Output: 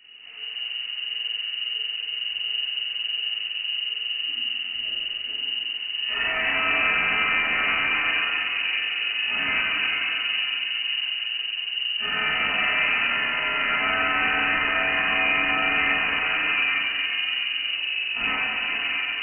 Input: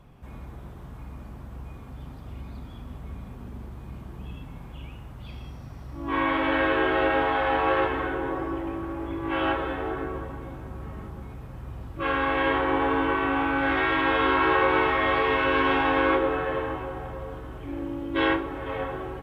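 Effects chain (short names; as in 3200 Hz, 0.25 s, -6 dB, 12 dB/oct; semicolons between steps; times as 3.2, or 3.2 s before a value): soft clip -24.5 dBFS, distortion -10 dB; shoebox room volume 210 m³, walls hard, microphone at 1.3 m; inverted band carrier 2900 Hz; gain -4.5 dB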